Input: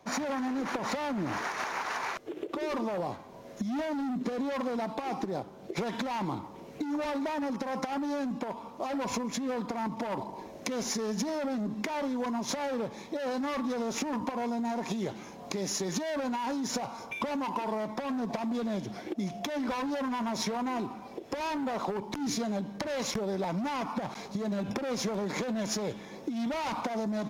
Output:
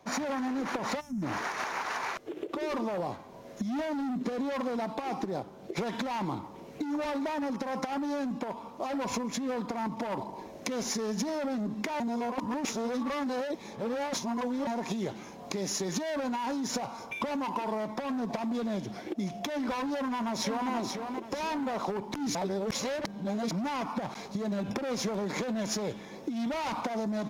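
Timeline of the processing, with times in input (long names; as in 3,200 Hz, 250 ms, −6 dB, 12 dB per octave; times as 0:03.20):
0:01.01–0:01.23: gain on a spectral selection 260–5,200 Hz −22 dB
0:12.00–0:14.67: reverse
0:19.96–0:20.71: delay throw 480 ms, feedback 35%, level −5 dB
0:22.35–0:23.51: reverse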